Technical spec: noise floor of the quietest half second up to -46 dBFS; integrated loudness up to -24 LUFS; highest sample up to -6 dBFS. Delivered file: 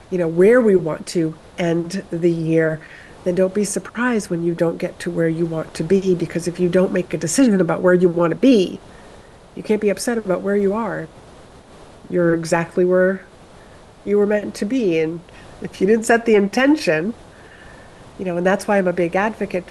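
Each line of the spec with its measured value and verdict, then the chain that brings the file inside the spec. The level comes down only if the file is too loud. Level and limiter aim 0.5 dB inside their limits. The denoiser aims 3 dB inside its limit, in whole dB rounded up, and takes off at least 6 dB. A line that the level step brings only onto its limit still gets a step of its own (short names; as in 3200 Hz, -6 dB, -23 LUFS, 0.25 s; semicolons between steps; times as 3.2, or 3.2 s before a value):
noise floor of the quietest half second -43 dBFS: fail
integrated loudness -18.5 LUFS: fail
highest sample -4.5 dBFS: fail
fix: gain -6 dB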